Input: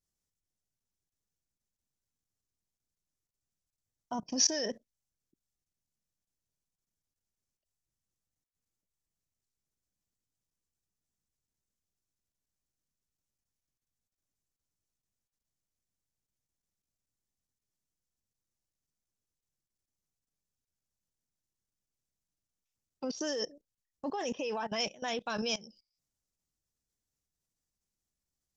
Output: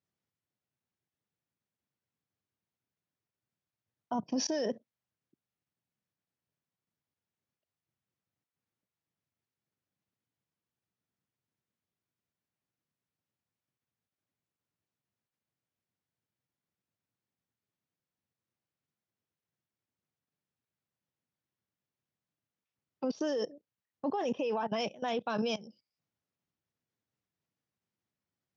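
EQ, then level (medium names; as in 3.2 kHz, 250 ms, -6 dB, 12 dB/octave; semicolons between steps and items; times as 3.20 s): high-pass 97 Hz 24 dB/octave; low-pass 2.9 kHz 12 dB/octave; dynamic bell 1.9 kHz, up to -7 dB, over -55 dBFS, Q 1.5; +3.5 dB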